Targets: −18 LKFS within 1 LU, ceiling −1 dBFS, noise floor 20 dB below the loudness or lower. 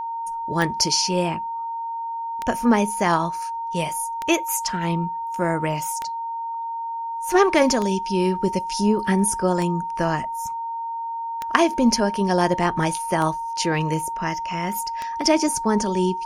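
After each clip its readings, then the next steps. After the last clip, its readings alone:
number of clicks 9; interfering tone 920 Hz; level of the tone −26 dBFS; integrated loudness −22.5 LKFS; sample peak −2.0 dBFS; target loudness −18.0 LKFS
→ click removal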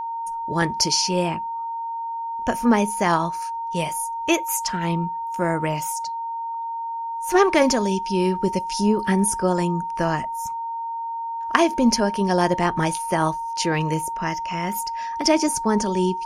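number of clicks 0; interfering tone 920 Hz; level of the tone −26 dBFS
→ notch filter 920 Hz, Q 30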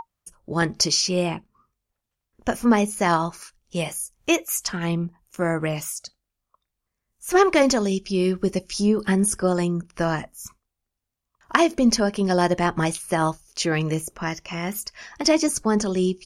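interfering tone none found; integrated loudness −23.0 LKFS; sample peak −2.0 dBFS; target loudness −18.0 LKFS
→ level +5 dB
brickwall limiter −1 dBFS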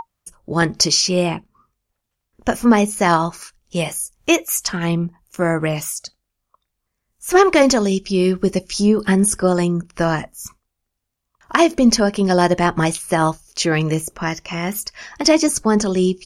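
integrated loudness −18.0 LKFS; sample peak −1.0 dBFS; background noise floor −78 dBFS

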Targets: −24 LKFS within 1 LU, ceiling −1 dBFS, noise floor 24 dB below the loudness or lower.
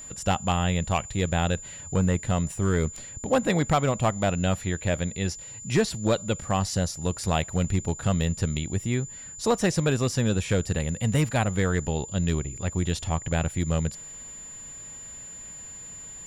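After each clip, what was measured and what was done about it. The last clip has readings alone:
share of clipped samples 0.5%; peaks flattened at −14.5 dBFS; interfering tone 7,100 Hz; level of the tone −39 dBFS; integrated loudness −26.5 LKFS; sample peak −14.5 dBFS; target loudness −24.0 LKFS
→ clipped peaks rebuilt −14.5 dBFS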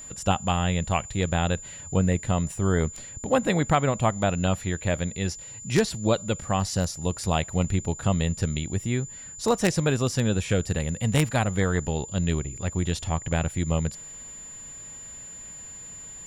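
share of clipped samples 0.0%; interfering tone 7,100 Hz; level of the tone −39 dBFS
→ notch filter 7,100 Hz, Q 30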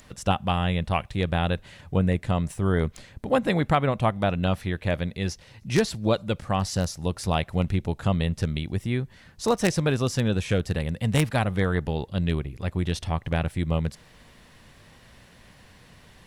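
interfering tone none found; integrated loudness −26.0 LKFS; sample peak −5.5 dBFS; target loudness −24.0 LKFS
→ level +2 dB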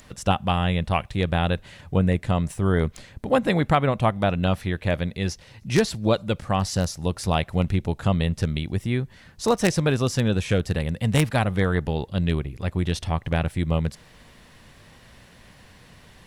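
integrated loudness −24.0 LKFS; sample peak −3.5 dBFS; background noise floor −51 dBFS

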